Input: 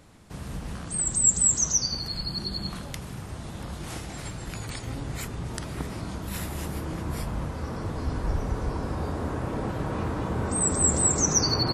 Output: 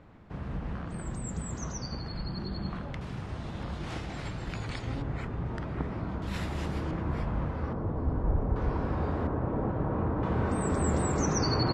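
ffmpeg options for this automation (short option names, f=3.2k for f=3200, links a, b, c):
-af "asetnsamples=n=441:p=0,asendcmd='3.01 lowpass f 3800;5.02 lowpass f 1800;6.22 lowpass f 4200;6.91 lowpass f 2200;7.73 lowpass f 1000;8.56 lowpass f 2600;9.27 lowpass f 1200;10.23 lowpass f 3000',lowpass=2k"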